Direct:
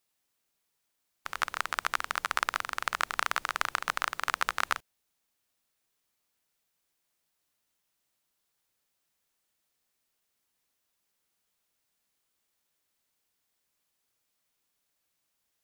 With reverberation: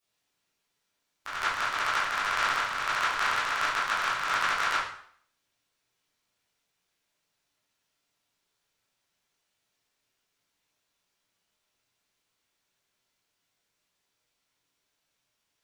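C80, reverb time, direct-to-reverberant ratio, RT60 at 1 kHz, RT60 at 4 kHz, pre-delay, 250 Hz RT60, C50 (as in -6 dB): 6.5 dB, 0.60 s, -10.5 dB, 0.60 s, 0.55 s, 7 ms, 0.60 s, 1.5 dB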